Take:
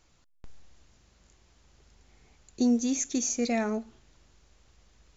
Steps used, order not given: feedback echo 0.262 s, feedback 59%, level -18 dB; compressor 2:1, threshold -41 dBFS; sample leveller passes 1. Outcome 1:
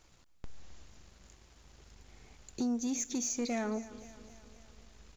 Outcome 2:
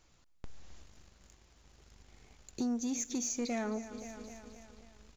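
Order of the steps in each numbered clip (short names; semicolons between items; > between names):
compressor > feedback echo > sample leveller; feedback echo > sample leveller > compressor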